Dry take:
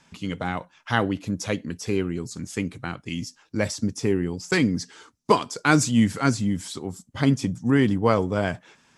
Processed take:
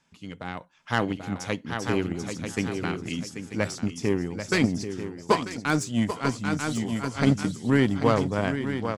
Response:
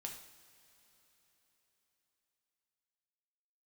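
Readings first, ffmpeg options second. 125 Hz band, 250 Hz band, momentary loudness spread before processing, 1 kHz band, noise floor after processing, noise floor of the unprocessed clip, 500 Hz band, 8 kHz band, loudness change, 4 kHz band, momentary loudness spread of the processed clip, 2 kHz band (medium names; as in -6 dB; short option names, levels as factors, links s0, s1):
-2.0 dB, -2.5 dB, 13 LU, -2.5 dB, -53 dBFS, -63 dBFS, -2.0 dB, -4.5 dB, -2.0 dB, -2.0 dB, 10 LU, -2.0 dB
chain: -filter_complex "[0:a]asplit=2[s0][s1];[s1]aecho=0:1:788|1576|2364:0.447|0.067|0.0101[s2];[s0][s2]amix=inputs=2:normalize=0,aeval=exprs='0.708*(cos(1*acos(clip(val(0)/0.708,-1,1)))-cos(1*PI/2))+0.0126*(cos(5*acos(clip(val(0)/0.708,-1,1)))-cos(5*PI/2))+0.0631*(cos(7*acos(clip(val(0)/0.708,-1,1)))-cos(7*PI/2))':c=same,asplit=2[s3][s4];[s4]aecho=0:1:941:0.299[s5];[s3][s5]amix=inputs=2:normalize=0,aeval=exprs='0.794*(cos(1*acos(clip(val(0)/0.794,-1,1)))-cos(1*PI/2))+0.0708*(cos(5*acos(clip(val(0)/0.794,-1,1)))-cos(5*PI/2))':c=same,dynaudnorm=f=400:g=3:m=3.76,volume=0.422"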